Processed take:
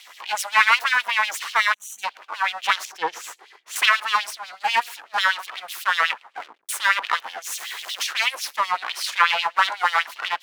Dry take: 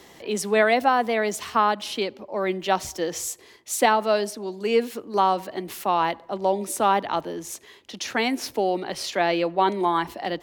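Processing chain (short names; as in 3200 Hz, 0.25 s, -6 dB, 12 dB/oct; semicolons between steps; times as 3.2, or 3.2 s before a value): 6.08 tape stop 0.61 s; 7.46–8.07 zero-crossing step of -32.5 dBFS; HPF 76 Hz; bell 370 Hz +8.5 dB 1.4 oct; half-wave rectifier; 1.74–2.04 spectral gain 250–5700 Hz -25 dB; 2.85–3.76 tilt -3.5 dB/oct; spectral gate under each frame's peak -10 dB weak; LFO high-pass sine 8.1 Hz 990–3500 Hz; gain +6 dB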